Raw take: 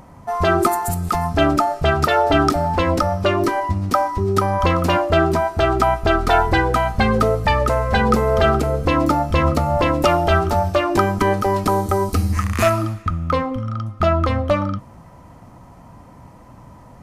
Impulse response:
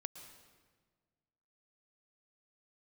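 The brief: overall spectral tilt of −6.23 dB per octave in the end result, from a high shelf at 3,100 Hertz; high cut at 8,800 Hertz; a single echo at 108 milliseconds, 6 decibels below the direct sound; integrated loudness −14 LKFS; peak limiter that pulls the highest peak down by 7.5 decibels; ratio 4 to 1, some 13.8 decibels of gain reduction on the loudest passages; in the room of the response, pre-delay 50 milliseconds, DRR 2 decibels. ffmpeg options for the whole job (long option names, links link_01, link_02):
-filter_complex "[0:a]lowpass=8800,highshelf=frequency=3100:gain=-3.5,acompressor=threshold=-29dB:ratio=4,alimiter=limit=-23dB:level=0:latency=1,aecho=1:1:108:0.501,asplit=2[link_01][link_02];[1:a]atrim=start_sample=2205,adelay=50[link_03];[link_02][link_03]afir=irnorm=-1:irlink=0,volume=1.5dB[link_04];[link_01][link_04]amix=inputs=2:normalize=0,volume=15dB"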